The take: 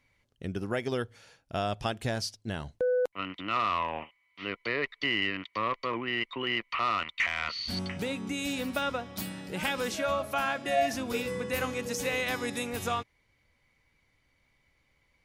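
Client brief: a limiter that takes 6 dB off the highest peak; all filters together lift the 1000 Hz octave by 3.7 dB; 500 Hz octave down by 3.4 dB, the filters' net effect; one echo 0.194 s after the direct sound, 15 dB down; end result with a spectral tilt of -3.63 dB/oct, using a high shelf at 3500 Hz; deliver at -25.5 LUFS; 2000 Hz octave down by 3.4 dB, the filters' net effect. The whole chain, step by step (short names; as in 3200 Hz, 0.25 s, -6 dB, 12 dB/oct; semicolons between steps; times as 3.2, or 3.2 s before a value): bell 500 Hz -6.5 dB; bell 1000 Hz +8.5 dB; bell 2000 Hz -9 dB; high shelf 3500 Hz +8.5 dB; limiter -20 dBFS; echo 0.194 s -15 dB; gain +6.5 dB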